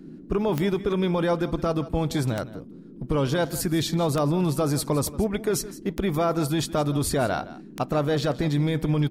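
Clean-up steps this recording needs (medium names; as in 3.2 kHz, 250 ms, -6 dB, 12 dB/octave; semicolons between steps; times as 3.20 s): de-click; noise print and reduce 30 dB; inverse comb 165 ms -16.5 dB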